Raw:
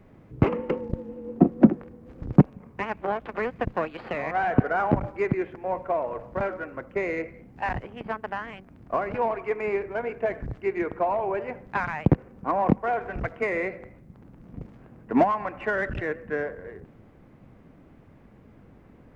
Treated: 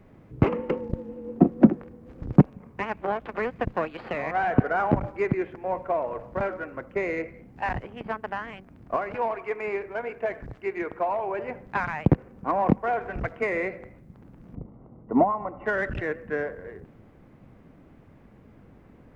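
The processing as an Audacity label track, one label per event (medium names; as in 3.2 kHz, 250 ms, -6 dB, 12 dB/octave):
8.960000	11.390000	bass shelf 370 Hz -7 dB
14.550000	15.660000	Savitzky-Golay filter over 65 samples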